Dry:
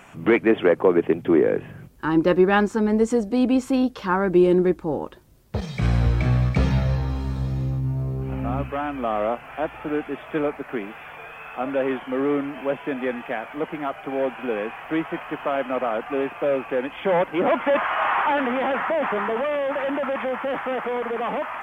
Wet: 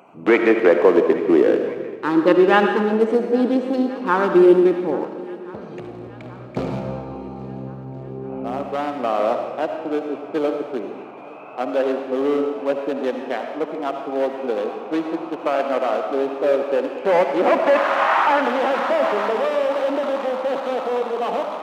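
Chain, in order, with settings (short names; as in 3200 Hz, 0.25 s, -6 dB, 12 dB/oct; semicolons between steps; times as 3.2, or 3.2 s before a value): Wiener smoothing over 25 samples; digital reverb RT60 1.3 s, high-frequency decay 0.95×, pre-delay 35 ms, DRR 5 dB; 5.04–6.57 compressor 2.5:1, threshold -32 dBFS, peak gain reduction 12 dB; HPF 300 Hz 12 dB/oct; swung echo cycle 1.378 s, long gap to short 1.5:1, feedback 52%, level -21.5 dB; gain +4.5 dB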